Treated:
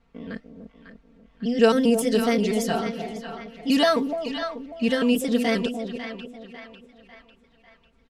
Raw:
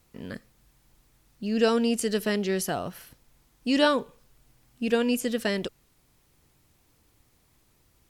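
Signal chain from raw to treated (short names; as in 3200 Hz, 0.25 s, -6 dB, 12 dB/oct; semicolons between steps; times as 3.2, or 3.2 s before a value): trilling pitch shifter +2 st, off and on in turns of 0.132 s; comb 4.4 ms, depth 94%; split-band echo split 820 Hz, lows 0.296 s, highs 0.548 s, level -7.5 dB; low-pass opened by the level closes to 2400 Hz, open at -16 dBFS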